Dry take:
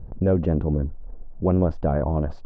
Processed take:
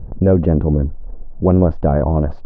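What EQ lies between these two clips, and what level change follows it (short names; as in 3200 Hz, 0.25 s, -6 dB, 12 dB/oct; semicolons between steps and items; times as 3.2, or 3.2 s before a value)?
LPF 1700 Hz 6 dB/oct; +7.5 dB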